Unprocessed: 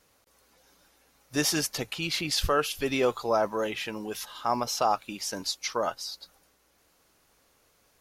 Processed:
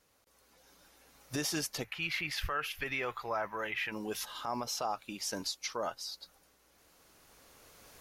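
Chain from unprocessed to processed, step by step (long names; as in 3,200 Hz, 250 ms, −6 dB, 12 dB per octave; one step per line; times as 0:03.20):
camcorder AGC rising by 7.5 dB per second
0:01.84–0:03.92: octave-band graphic EQ 250/500/2,000/4,000/8,000 Hz −8/−5/+11/−5/−10 dB
brickwall limiter −18.5 dBFS, peak gain reduction 7 dB
level −6 dB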